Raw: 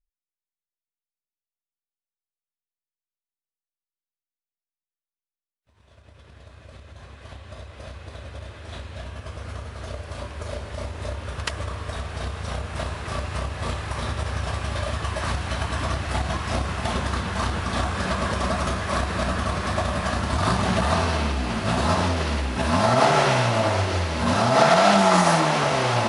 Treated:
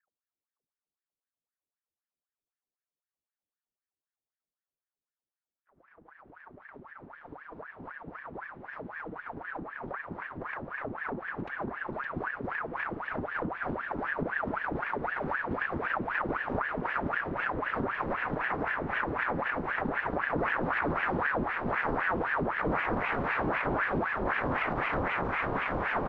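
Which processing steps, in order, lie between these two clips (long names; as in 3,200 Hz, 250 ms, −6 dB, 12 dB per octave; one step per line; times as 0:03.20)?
sub-harmonics by changed cycles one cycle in 2, inverted
on a send: single-tap delay 564 ms −9.5 dB
on the sum: brickwall limiter −12.5 dBFS, peak gain reduction 8 dB
Bessel low-pass filter 530 Hz, order 2
ring modulator whose carrier an LFO sweeps 970 Hz, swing 80%, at 3.9 Hz
level −2 dB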